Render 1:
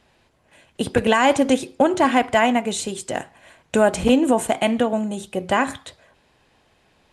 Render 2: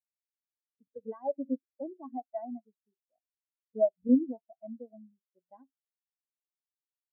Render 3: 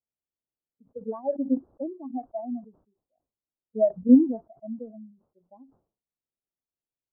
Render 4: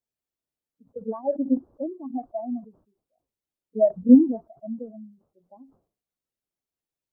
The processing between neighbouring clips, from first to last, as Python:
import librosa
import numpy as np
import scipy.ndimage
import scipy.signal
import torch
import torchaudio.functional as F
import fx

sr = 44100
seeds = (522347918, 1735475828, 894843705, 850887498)

y1 = fx.spectral_expand(x, sr, expansion=4.0)
y1 = F.gain(torch.from_numpy(y1), -9.0).numpy()
y2 = scipy.ndimage.gaussian_filter1d(y1, 12.0, mode='constant')
y2 = fx.sustainer(y2, sr, db_per_s=140.0)
y2 = F.gain(torch.from_numpy(y2), 8.5).numpy()
y3 = fx.spec_quant(y2, sr, step_db=15)
y3 = F.gain(torch.from_numpy(y3), 2.5).numpy()